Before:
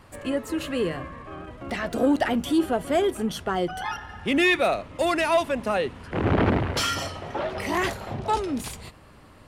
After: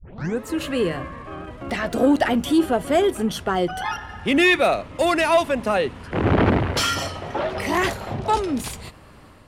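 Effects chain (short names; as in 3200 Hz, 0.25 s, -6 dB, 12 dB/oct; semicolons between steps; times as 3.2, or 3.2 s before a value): tape start at the beginning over 0.42 s; AGC gain up to 4 dB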